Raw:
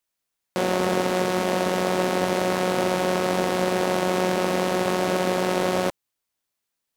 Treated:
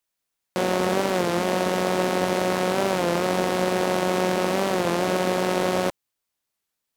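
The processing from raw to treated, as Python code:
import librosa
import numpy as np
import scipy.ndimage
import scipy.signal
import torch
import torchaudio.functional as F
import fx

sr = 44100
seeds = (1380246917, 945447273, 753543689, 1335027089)

y = fx.record_warp(x, sr, rpm=33.33, depth_cents=100.0)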